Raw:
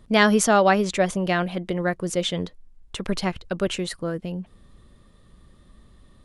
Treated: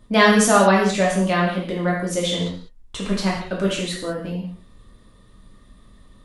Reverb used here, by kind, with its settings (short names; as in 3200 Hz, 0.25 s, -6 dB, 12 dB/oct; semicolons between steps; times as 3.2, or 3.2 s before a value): non-linear reverb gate 0.23 s falling, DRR -4 dB; gain -2 dB